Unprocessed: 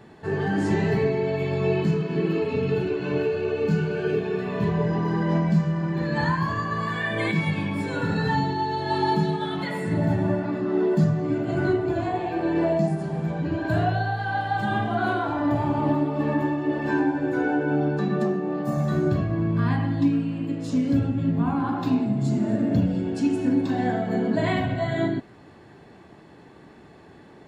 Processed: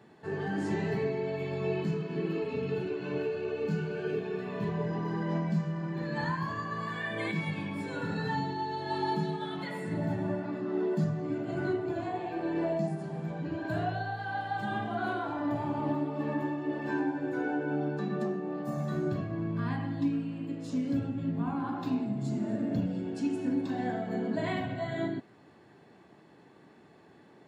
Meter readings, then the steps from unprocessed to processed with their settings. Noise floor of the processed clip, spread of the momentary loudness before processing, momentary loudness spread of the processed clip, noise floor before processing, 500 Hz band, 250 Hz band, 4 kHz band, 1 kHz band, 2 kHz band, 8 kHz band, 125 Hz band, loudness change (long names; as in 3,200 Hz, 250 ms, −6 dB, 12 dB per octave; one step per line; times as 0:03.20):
−57 dBFS, 4 LU, 4 LU, −49 dBFS, −8.0 dB, −8.5 dB, −8.0 dB, −8.0 dB, −8.0 dB, can't be measured, −10.0 dB, −8.5 dB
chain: high-pass filter 120 Hz
level −8 dB